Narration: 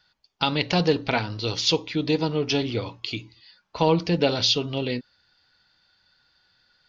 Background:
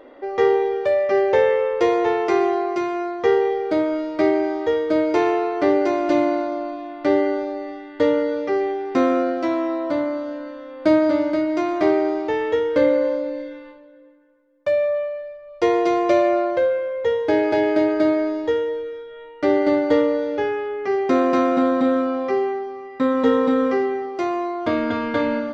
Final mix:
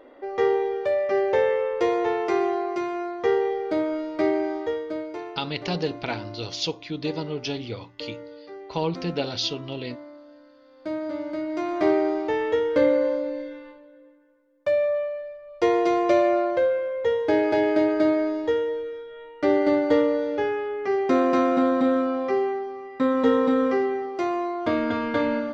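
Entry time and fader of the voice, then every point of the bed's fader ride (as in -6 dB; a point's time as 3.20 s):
4.95 s, -6.0 dB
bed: 4.57 s -4.5 dB
5.36 s -19.5 dB
10.51 s -19.5 dB
11.90 s -2.5 dB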